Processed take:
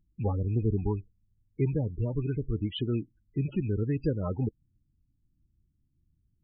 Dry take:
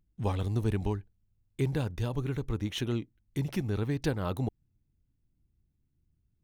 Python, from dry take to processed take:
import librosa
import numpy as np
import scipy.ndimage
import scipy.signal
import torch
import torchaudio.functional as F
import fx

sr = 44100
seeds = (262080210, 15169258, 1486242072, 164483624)

y = fx.rattle_buzz(x, sr, strikes_db=-34.0, level_db=-36.0)
y = fx.spec_topn(y, sr, count=16)
y = y * librosa.db_to_amplitude(2.0)